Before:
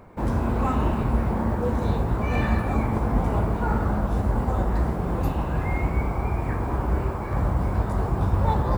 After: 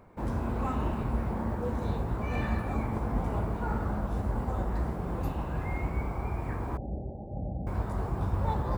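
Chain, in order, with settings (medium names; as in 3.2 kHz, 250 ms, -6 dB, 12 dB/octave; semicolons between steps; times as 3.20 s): 6.77–7.67 s: rippled Chebyshev low-pass 820 Hz, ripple 6 dB; trim -7.5 dB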